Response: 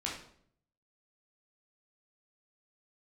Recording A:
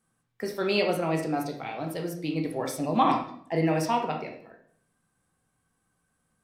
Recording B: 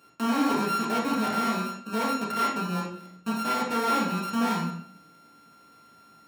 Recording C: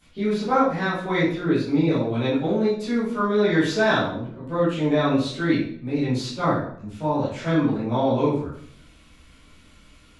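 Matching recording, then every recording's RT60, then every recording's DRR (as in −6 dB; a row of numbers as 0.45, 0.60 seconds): B; 0.60, 0.60, 0.60 seconds; 1.5, −4.0, −13.0 decibels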